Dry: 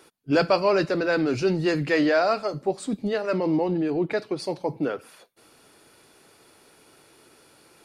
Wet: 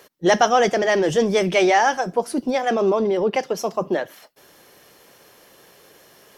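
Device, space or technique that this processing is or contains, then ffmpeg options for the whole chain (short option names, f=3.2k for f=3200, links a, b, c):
nightcore: -af "asetrate=54243,aresample=44100,volume=4.5dB"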